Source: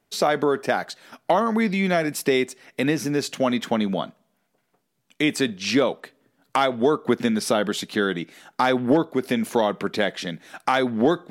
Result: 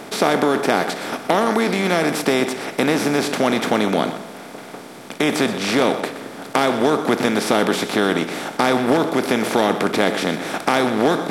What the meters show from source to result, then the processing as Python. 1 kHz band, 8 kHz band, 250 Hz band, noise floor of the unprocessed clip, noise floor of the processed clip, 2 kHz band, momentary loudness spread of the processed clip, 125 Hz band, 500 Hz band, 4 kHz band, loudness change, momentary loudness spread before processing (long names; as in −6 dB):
+4.5 dB, +5.0 dB, +3.5 dB, −72 dBFS, −37 dBFS, +5.0 dB, 8 LU, +3.0 dB, +4.0 dB, +5.0 dB, +4.0 dB, 9 LU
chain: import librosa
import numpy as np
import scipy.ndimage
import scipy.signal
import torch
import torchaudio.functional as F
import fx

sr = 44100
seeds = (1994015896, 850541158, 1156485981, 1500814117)

p1 = fx.bin_compress(x, sr, power=0.4)
p2 = p1 + fx.echo_single(p1, sr, ms=123, db=-12.0, dry=0)
y = p2 * 10.0 ** (-2.5 / 20.0)